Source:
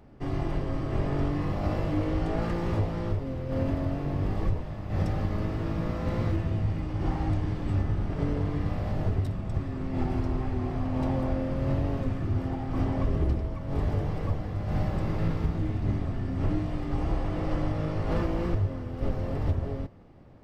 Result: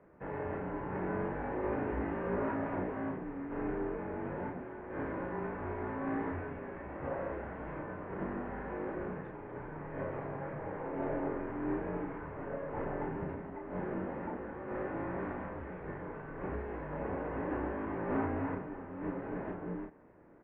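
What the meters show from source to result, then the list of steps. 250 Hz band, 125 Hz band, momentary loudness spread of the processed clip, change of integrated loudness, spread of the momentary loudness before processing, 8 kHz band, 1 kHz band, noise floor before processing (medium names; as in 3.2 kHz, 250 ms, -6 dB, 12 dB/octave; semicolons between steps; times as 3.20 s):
-7.0 dB, -17.0 dB, 8 LU, -8.5 dB, 3 LU, no reading, -2.0 dB, -35 dBFS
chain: mistuned SSB -240 Hz 440–2300 Hz; doubling 33 ms -3.5 dB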